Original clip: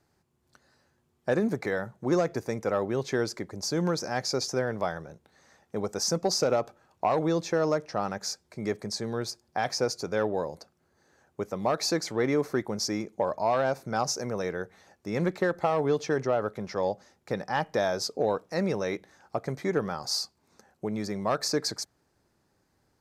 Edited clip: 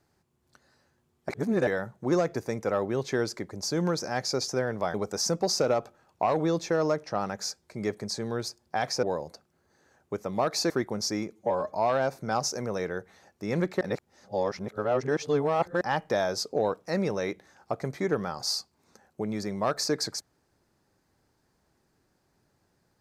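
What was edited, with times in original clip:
0:01.29–0:01.67: reverse
0:04.94–0:05.76: remove
0:09.85–0:10.30: remove
0:11.97–0:12.48: remove
0:13.10–0:13.38: time-stretch 1.5×
0:15.45–0:17.45: reverse

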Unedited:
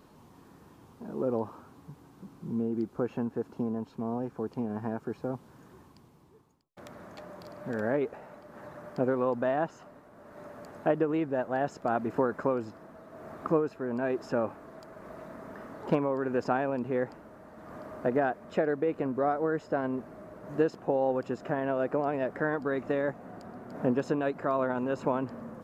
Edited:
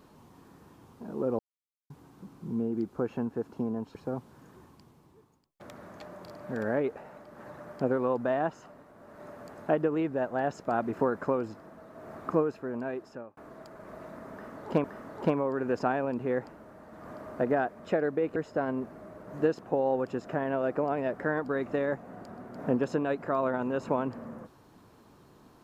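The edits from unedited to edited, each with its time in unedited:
0:01.39–0:01.90: silence
0:03.95–0:05.12: remove
0:13.72–0:14.54: fade out
0:15.49–0:16.01: repeat, 2 plays
0:19.01–0:19.52: remove

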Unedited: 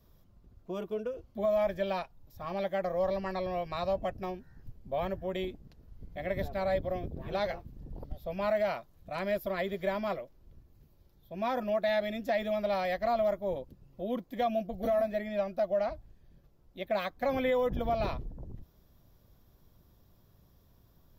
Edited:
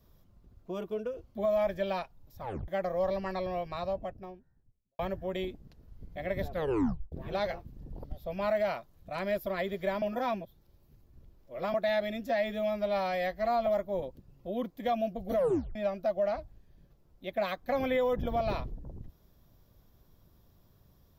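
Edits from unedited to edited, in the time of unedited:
0:02.41: tape stop 0.27 s
0:03.38–0:04.99: fade out and dull
0:06.51: tape stop 0.61 s
0:10.02–0:11.74: reverse
0:12.27–0:13.20: time-stretch 1.5×
0:14.89: tape stop 0.40 s

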